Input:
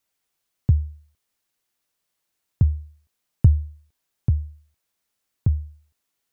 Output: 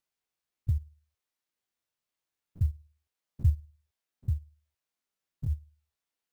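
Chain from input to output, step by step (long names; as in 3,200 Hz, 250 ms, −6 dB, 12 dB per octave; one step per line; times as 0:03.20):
spectrum averaged block by block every 50 ms
reverb reduction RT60 0.57 s
converter with an unsteady clock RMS 0.024 ms
level −7.5 dB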